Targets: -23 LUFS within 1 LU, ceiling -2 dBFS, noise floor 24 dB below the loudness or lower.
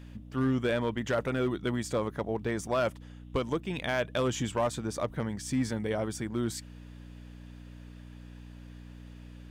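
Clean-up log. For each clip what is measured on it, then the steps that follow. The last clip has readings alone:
clipped samples 0.9%; clipping level -21.5 dBFS; hum 60 Hz; highest harmonic 300 Hz; hum level -45 dBFS; loudness -31.5 LUFS; peak level -21.5 dBFS; loudness target -23.0 LUFS
-> clip repair -21.5 dBFS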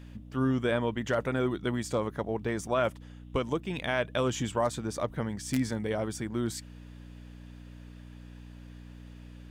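clipped samples 0.0%; hum 60 Hz; highest harmonic 300 Hz; hum level -45 dBFS
-> de-hum 60 Hz, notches 5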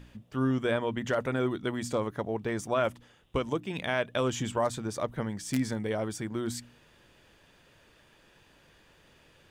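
hum not found; loudness -31.5 LUFS; peak level -13.0 dBFS; loudness target -23.0 LUFS
-> trim +8.5 dB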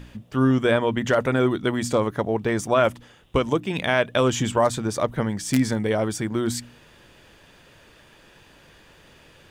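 loudness -23.0 LUFS; peak level -4.5 dBFS; noise floor -53 dBFS

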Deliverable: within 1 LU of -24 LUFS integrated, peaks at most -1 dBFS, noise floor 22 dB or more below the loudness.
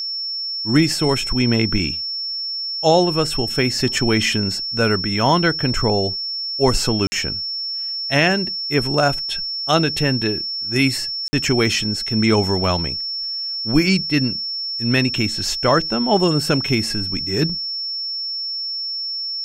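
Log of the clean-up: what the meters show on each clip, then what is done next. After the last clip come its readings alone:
dropouts 2; longest dropout 50 ms; steady tone 5.4 kHz; tone level -23 dBFS; loudness -19.0 LUFS; peak level -3.0 dBFS; loudness target -24.0 LUFS
-> interpolate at 7.07/11.28 s, 50 ms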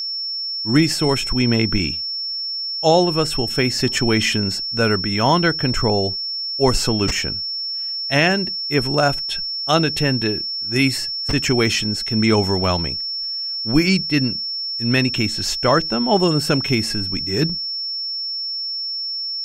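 dropouts 0; steady tone 5.4 kHz; tone level -23 dBFS
-> band-stop 5.4 kHz, Q 30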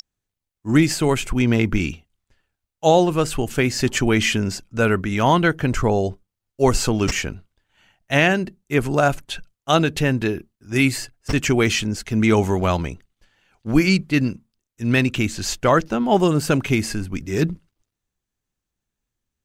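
steady tone not found; loudness -20.0 LUFS; peak level -4.0 dBFS; loudness target -24.0 LUFS
-> trim -4 dB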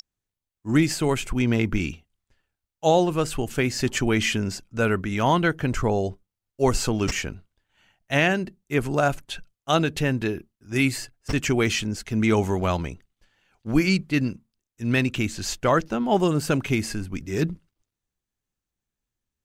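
loudness -24.0 LUFS; peak level -8.0 dBFS; noise floor -87 dBFS

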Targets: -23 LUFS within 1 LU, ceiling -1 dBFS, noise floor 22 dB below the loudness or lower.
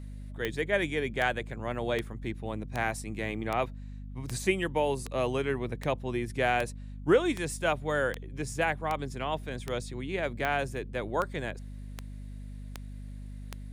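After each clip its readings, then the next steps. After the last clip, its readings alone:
clicks found 18; hum 50 Hz; highest harmonic 250 Hz; hum level -39 dBFS; loudness -31.5 LUFS; peak level -12.5 dBFS; loudness target -23.0 LUFS
-> de-click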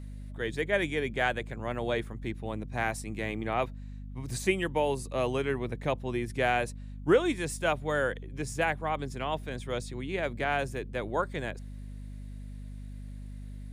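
clicks found 0; hum 50 Hz; highest harmonic 250 Hz; hum level -39 dBFS
-> de-hum 50 Hz, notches 5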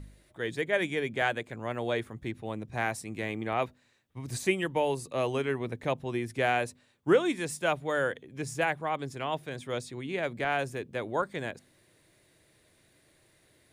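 hum not found; loudness -31.5 LUFS; peak level -12.0 dBFS; loudness target -23.0 LUFS
-> trim +8.5 dB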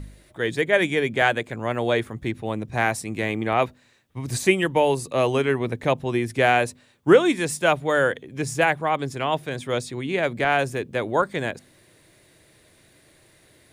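loudness -23.0 LUFS; peak level -3.5 dBFS; noise floor -57 dBFS

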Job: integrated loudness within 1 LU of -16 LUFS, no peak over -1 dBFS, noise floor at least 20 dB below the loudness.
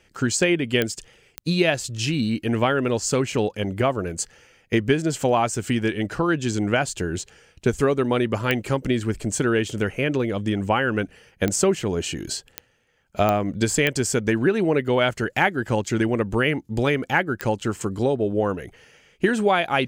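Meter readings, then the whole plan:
clicks found 8; loudness -23.0 LUFS; peak level -3.5 dBFS; loudness target -16.0 LUFS
-> de-click; trim +7 dB; peak limiter -1 dBFS

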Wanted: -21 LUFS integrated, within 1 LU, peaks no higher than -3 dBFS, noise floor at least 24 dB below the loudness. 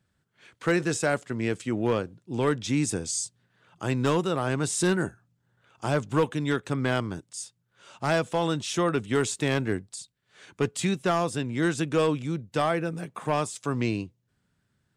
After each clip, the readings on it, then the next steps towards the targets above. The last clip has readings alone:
clipped samples 0.5%; clipping level -16.0 dBFS; loudness -27.5 LUFS; peak level -16.0 dBFS; loudness target -21.0 LUFS
-> clip repair -16 dBFS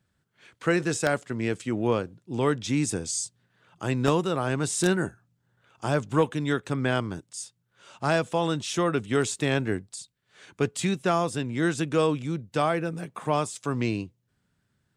clipped samples 0.0%; loudness -27.5 LUFS; peak level -7.0 dBFS; loudness target -21.0 LUFS
-> trim +6.5 dB; peak limiter -3 dBFS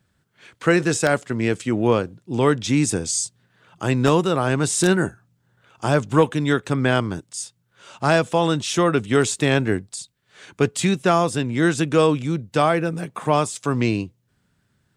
loudness -21.0 LUFS; peak level -3.0 dBFS; noise floor -68 dBFS

